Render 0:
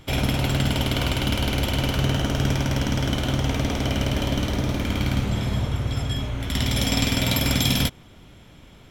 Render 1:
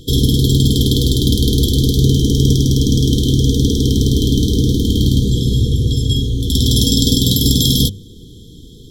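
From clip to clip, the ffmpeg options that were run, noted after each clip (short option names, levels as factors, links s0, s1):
-af "bandreject=f=50:t=h:w=6,bandreject=f=100:t=h:w=6,bandreject=f=150:t=h:w=6,bandreject=f=200:t=h:w=6,afftfilt=real='re*(1-between(b*sr/4096,500,3100))':imag='im*(1-between(b*sr/4096,500,3100))':win_size=4096:overlap=0.75,alimiter=level_in=3.98:limit=0.891:release=50:level=0:latency=1,volume=0.891"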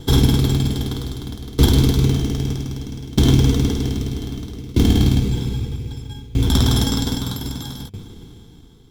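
-filter_complex "[0:a]asplit=2[s0][s1];[s1]acrusher=samples=18:mix=1:aa=0.000001,volume=0.631[s2];[s0][s2]amix=inputs=2:normalize=0,aeval=exprs='val(0)*pow(10,-23*if(lt(mod(0.63*n/s,1),2*abs(0.63)/1000),1-mod(0.63*n/s,1)/(2*abs(0.63)/1000),(mod(0.63*n/s,1)-2*abs(0.63)/1000)/(1-2*abs(0.63)/1000))/20)':c=same,volume=0.841"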